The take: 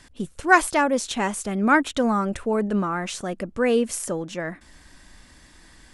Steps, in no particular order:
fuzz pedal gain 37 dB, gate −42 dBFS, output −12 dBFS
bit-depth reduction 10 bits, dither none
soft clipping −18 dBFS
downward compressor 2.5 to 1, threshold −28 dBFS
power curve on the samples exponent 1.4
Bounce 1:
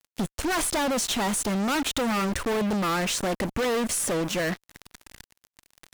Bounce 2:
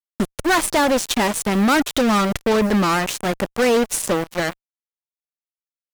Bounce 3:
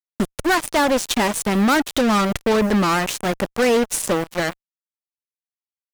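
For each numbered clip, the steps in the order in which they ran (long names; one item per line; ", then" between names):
bit-depth reduction, then fuzz pedal, then power curve on the samples, then downward compressor, then soft clipping
power curve on the samples, then soft clipping, then downward compressor, then bit-depth reduction, then fuzz pedal
power curve on the samples, then bit-depth reduction, then downward compressor, then soft clipping, then fuzz pedal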